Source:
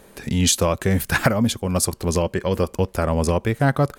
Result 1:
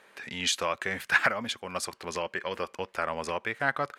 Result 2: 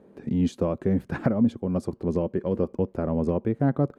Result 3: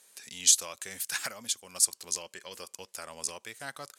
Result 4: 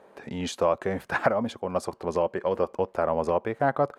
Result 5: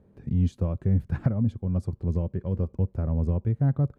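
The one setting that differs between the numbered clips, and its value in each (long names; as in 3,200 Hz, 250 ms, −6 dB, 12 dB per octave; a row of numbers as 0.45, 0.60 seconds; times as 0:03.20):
resonant band-pass, frequency: 1,900, 270, 7,400, 750, 100 Hertz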